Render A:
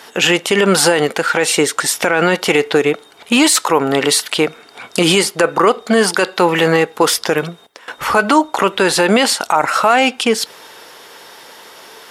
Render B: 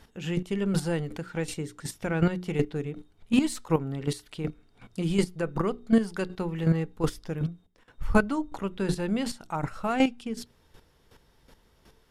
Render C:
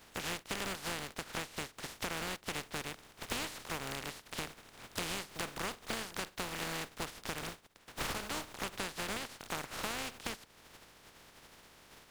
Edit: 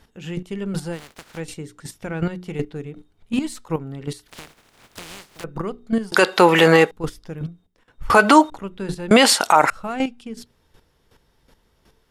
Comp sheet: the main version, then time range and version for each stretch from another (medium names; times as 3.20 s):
B
0.96–1.36 s: from C, crossfade 0.10 s
4.28–5.44 s: from C
6.12–6.91 s: from A
8.10–8.50 s: from A
9.11–9.70 s: from A